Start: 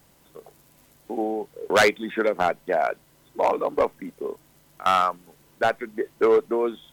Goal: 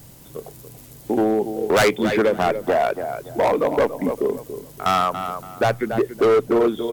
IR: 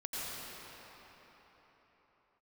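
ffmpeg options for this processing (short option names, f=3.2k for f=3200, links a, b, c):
-filter_complex "[0:a]equalizer=f=120:w=7.9:g=13.5,asplit=2[a][b];[b]adelay=283,lowpass=f=2.3k:p=1,volume=-12.5dB,asplit=2[c][d];[d]adelay=283,lowpass=f=2.3k:p=1,volume=0.26,asplit=2[e][f];[f]adelay=283,lowpass=f=2.3k:p=1,volume=0.26[g];[a][c][e][g]amix=inputs=4:normalize=0,asplit=2[h][i];[i]acompressor=threshold=-28dB:ratio=6,volume=-0.5dB[j];[h][j]amix=inputs=2:normalize=0,equalizer=f=1.4k:w=0.36:g=-8.5,asoftclip=type=hard:threshold=-21.5dB,volume=8.5dB"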